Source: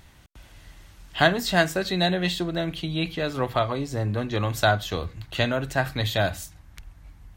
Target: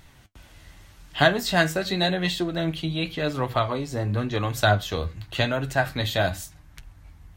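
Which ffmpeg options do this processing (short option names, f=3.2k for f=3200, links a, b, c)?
-af "flanger=delay=6.5:depth=6.3:regen=55:speed=0.9:shape=sinusoidal,volume=4.5dB"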